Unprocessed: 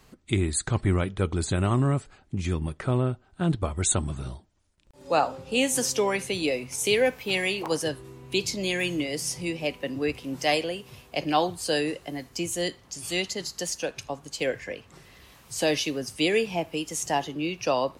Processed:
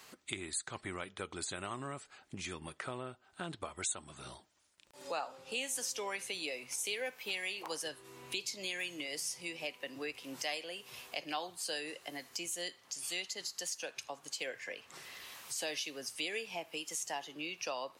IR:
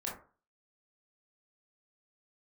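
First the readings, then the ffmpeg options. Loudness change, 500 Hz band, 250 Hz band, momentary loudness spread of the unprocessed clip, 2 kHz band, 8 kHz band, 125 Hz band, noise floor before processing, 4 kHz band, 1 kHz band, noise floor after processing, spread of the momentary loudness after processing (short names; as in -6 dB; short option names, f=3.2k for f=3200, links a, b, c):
-12.5 dB, -16.5 dB, -19.0 dB, 10 LU, -9.5 dB, -8.5 dB, -25.0 dB, -58 dBFS, -8.5 dB, -13.5 dB, -67 dBFS, 8 LU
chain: -af "highpass=f=1.2k:p=1,acompressor=threshold=-49dB:ratio=2.5,volume=5.5dB"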